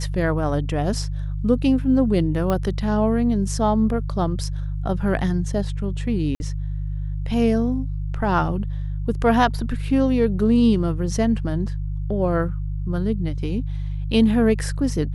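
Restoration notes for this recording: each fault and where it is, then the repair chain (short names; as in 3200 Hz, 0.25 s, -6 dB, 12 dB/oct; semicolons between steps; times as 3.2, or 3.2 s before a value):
hum 50 Hz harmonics 3 -26 dBFS
2.5 pop -11 dBFS
6.35–6.4 gap 50 ms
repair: de-click; de-hum 50 Hz, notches 3; interpolate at 6.35, 50 ms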